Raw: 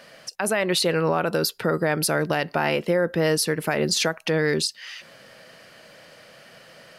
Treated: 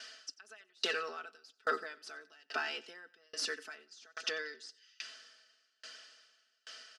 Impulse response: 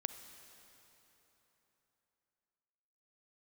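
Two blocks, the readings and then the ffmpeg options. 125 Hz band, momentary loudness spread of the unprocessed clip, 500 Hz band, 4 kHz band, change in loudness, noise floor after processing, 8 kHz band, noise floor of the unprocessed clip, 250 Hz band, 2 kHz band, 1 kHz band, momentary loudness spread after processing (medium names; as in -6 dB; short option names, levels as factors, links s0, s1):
under -40 dB, 6 LU, -22.0 dB, -13.0 dB, -17.0 dB, -77 dBFS, -19.0 dB, -50 dBFS, -30.0 dB, -12.5 dB, -14.5 dB, 18 LU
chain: -filter_complex "[0:a]aderivative,aecho=1:1:4.6:0.77,areverse,acompressor=threshold=0.02:ratio=8,areverse,asoftclip=type=hard:threshold=0.0282,highpass=f=260:w=0.5412,highpass=f=260:w=1.3066,equalizer=f=280:t=q:w=4:g=9,equalizer=f=570:t=q:w=4:g=-7,equalizer=f=950:t=q:w=4:g=-10,equalizer=f=1400:t=q:w=4:g=5,equalizer=f=2200:t=q:w=4:g=-9,equalizer=f=4100:t=q:w=4:g=-5,lowpass=f=5800:w=0.5412,lowpass=f=5800:w=1.3066,asplit=2[s0][s1];[s1]aecho=0:1:91|182|273|364|455:0.141|0.0777|0.0427|0.0235|0.0129[s2];[s0][s2]amix=inputs=2:normalize=0,aeval=exprs='val(0)*pow(10,-35*if(lt(mod(1.2*n/s,1),2*abs(1.2)/1000),1-mod(1.2*n/s,1)/(2*abs(1.2)/1000),(mod(1.2*n/s,1)-2*abs(1.2)/1000)/(1-2*abs(1.2)/1000))/20)':c=same,volume=3.98"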